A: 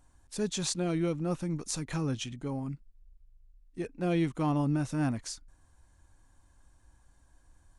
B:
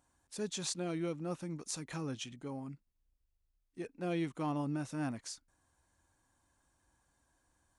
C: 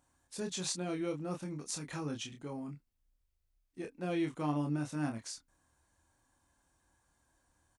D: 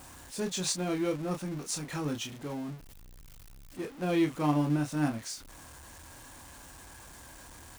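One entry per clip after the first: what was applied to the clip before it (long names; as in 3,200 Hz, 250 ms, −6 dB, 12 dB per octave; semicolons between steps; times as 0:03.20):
high-pass filter 210 Hz 6 dB per octave; level −5 dB
double-tracking delay 27 ms −5 dB
converter with a step at zero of −42 dBFS; expander for the loud parts 1.5 to 1, over −46 dBFS; level +6.5 dB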